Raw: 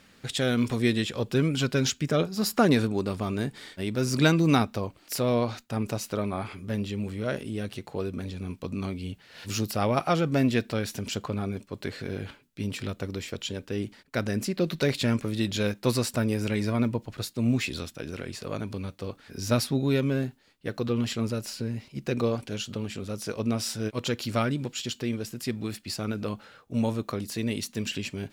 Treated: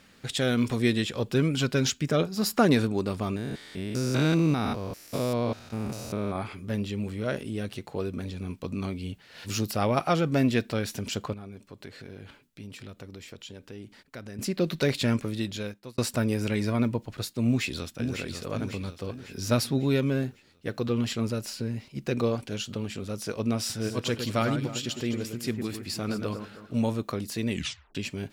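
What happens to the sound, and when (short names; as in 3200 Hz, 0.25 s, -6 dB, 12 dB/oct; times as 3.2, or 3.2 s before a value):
3.36–6.36 stepped spectrum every 0.2 s
11.33–14.39 compressor 2:1, threshold -47 dBFS
15.16–15.98 fade out linear
17.44–18.19 echo throw 0.55 s, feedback 50%, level -6.5 dB
23.59–26.78 echo with dull and thin repeats by turns 0.106 s, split 2100 Hz, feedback 59%, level -7 dB
27.5 tape stop 0.45 s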